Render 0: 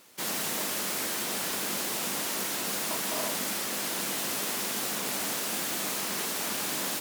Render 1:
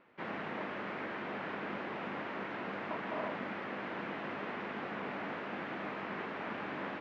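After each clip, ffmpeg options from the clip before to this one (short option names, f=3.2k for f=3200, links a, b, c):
-af "lowpass=f=2.2k:w=0.5412,lowpass=f=2.2k:w=1.3066,volume=-3dB"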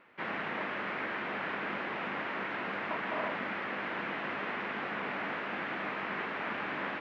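-af "equalizer=f=2.1k:t=o:w=2.4:g=7"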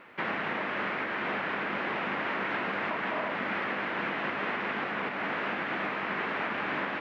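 -af "alimiter=level_in=7dB:limit=-24dB:level=0:latency=1:release=464,volume=-7dB,volume=9dB"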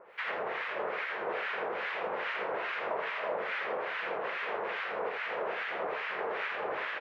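-filter_complex "[0:a]acrossover=split=1200[a][b];[a]aeval=exprs='val(0)*(1-1/2+1/2*cos(2*PI*2.4*n/s))':c=same[c];[b]aeval=exprs='val(0)*(1-1/2-1/2*cos(2*PI*2.4*n/s))':c=same[d];[c][d]amix=inputs=2:normalize=0,lowshelf=f=350:t=q:w=3:g=-9,aecho=1:1:82:0.531"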